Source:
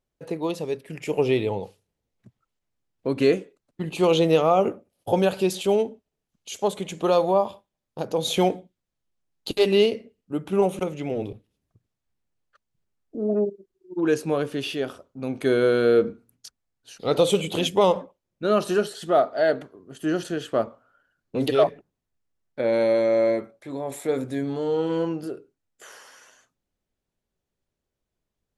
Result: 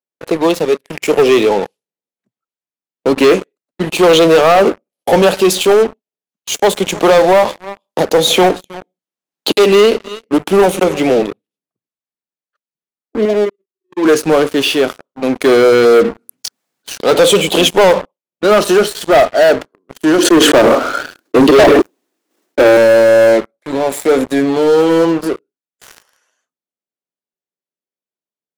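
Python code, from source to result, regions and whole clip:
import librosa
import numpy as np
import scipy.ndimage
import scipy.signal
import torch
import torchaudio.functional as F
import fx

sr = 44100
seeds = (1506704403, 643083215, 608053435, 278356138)

y = fx.chain(x, sr, fx.echo_single(ms=315, db=-23.5),
    fx.band_squash(depth_pct=40), at=(6.54, 11.19))
y = fx.chain(y, sr, fx.median_filter(points=25),
    fx.low_shelf(hz=440.0, db=-10.0), at=(13.25, 14.05))
y = fx.chain(y, sr, fx.highpass(hz=90.0, slope=12),
    fx.env_flatten(amount_pct=50), at=(16.09, 17.04))
y = fx.chain(y, sr, fx.transient(attack_db=5, sustain_db=-12),
    fx.highpass_res(hz=310.0, q=3.1),
    fx.sustainer(db_per_s=55.0), at=(20.18, 22.77))
y = scipy.signal.sosfilt(scipy.signal.bessel(8, 260.0, 'highpass', norm='mag', fs=sr, output='sos'), y)
y = fx.leveller(y, sr, passes=5)
y = F.gain(torch.from_numpy(y), -1.0).numpy()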